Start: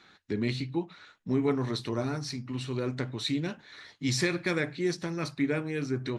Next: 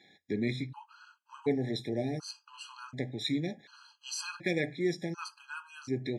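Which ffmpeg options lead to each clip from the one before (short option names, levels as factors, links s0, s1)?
-af "highpass=120,afftfilt=real='re*gt(sin(2*PI*0.68*pts/sr)*(1-2*mod(floor(b*sr/1024/820),2)),0)':imag='im*gt(sin(2*PI*0.68*pts/sr)*(1-2*mod(floor(b*sr/1024/820),2)),0)':win_size=1024:overlap=0.75,volume=0.891"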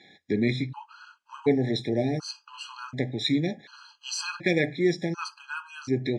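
-af "lowpass=6800,volume=2.24"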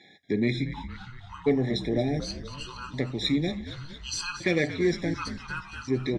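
-filter_complex "[0:a]acontrast=63,asplit=9[s0][s1][s2][s3][s4][s5][s6][s7][s8];[s1]adelay=231,afreqshift=-75,volume=0.251[s9];[s2]adelay=462,afreqshift=-150,volume=0.16[s10];[s3]adelay=693,afreqshift=-225,volume=0.102[s11];[s4]adelay=924,afreqshift=-300,volume=0.0661[s12];[s5]adelay=1155,afreqshift=-375,volume=0.0422[s13];[s6]adelay=1386,afreqshift=-450,volume=0.0269[s14];[s7]adelay=1617,afreqshift=-525,volume=0.0172[s15];[s8]adelay=1848,afreqshift=-600,volume=0.0111[s16];[s0][s9][s10][s11][s12][s13][s14][s15][s16]amix=inputs=9:normalize=0,volume=0.447"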